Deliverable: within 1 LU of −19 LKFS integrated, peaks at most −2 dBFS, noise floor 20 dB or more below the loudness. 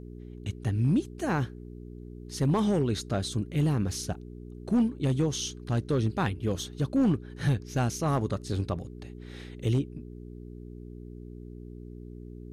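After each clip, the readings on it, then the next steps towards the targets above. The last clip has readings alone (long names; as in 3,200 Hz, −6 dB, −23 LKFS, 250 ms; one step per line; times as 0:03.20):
share of clipped samples 0.7%; peaks flattened at −18.5 dBFS; mains hum 60 Hz; hum harmonics up to 420 Hz; level of the hum −41 dBFS; integrated loudness −29.0 LKFS; sample peak −18.5 dBFS; target loudness −19.0 LKFS
→ clipped peaks rebuilt −18.5 dBFS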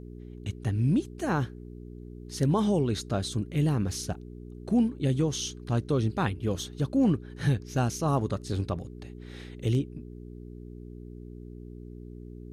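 share of clipped samples 0.0%; mains hum 60 Hz; hum harmonics up to 420 Hz; level of the hum −41 dBFS
→ hum removal 60 Hz, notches 7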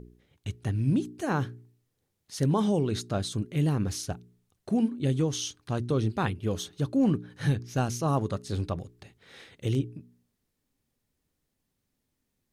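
mains hum none found; integrated loudness −29.0 LKFS; sample peak −12.5 dBFS; target loudness −19.0 LKFS
→ level +10 dB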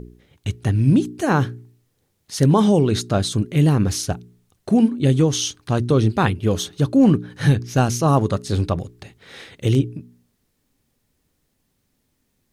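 integrated loudness −19.5 LKFS; sample peak −2.5 dBFS; background noise floor −70 dBFS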